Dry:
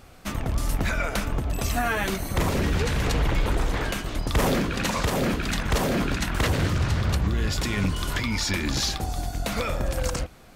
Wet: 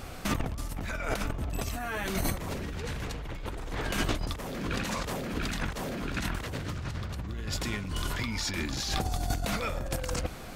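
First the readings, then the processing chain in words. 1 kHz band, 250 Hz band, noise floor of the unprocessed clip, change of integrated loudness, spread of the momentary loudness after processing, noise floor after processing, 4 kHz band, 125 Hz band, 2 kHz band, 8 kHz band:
-7.0 dB, -7.5 dB, -42 dBFS, -7.5 dB, 6 LU, -39 dBFS, -6.0 dB, -8.5 dB, -7.0 dB, -6.0 dB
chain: negative-ratio compressor -33 dBFS, ratio -1

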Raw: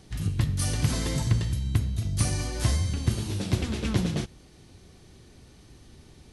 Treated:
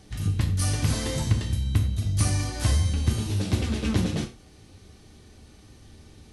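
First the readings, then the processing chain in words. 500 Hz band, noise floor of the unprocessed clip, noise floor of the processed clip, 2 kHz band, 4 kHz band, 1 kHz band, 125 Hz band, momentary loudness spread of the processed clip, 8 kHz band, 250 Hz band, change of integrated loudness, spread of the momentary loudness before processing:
+1.0 dB, -53 dBFS, -52 dBFS, +1.5 dB, +1.5 dB, +2.0 dB, +2.0 dB, 3 LU, +1.5 dB, +1.5 dB, +1.5 dB, 4 LU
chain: non-linear reverb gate 0.12 s falling, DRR 4.5 dB

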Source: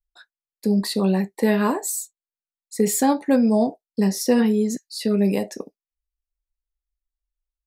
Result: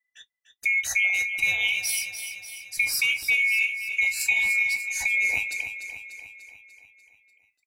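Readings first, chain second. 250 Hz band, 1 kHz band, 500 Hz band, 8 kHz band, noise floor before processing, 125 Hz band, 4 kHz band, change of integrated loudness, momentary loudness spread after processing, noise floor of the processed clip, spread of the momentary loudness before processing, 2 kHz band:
under -40 dB, under -15 dB, under -30 dB, -1.0 dB, under -85 dBFS, n/a, +4.0 dB, -1.5 dB, 14 LU, -79 dBFS, 10 LU, +15.5 dB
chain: band-swap scrambler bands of 2000 Hz; compressor 3:1, threshold -22 dBFS, peak gain reduction 7.5 dB; feedback echo 0.295 s, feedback 57%, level -9.5 dB

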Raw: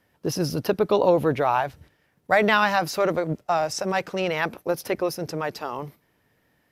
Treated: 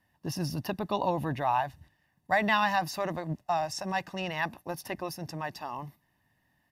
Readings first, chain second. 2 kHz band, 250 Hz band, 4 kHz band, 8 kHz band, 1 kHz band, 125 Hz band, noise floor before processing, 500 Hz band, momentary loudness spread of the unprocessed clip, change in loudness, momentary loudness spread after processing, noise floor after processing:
-6.0 dB, -7.5 dB, -5.5 dB, -7.5 dB, -4.5 dB, -4.5 dB, -68 dBFS, -12.0 dB, 11 LU, -7.5 dB, 12 LU, -74 dBFS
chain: comb 1.1 ms, depth 71%; gain -8 dB

